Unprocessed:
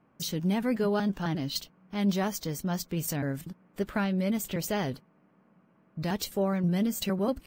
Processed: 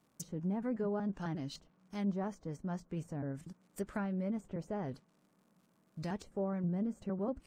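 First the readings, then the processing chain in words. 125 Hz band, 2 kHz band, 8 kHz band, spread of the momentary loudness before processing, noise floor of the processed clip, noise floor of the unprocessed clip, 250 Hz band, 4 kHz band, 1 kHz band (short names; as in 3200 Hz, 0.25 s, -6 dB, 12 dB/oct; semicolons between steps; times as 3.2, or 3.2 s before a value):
-8.0 dB, -13.0 dB, -16.5 dB, 9 LU, -73 dBFS, -65 dBFS, -8.0 dB, -19.0 dB, -9.0 dB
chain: resonant high shelf 5300 Hz +14 dB, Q 1.5; crackle 180/s -53 dBFS; treble ducked by the level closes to 1100 Hz, closed at -23 dBFS; gain -8 dB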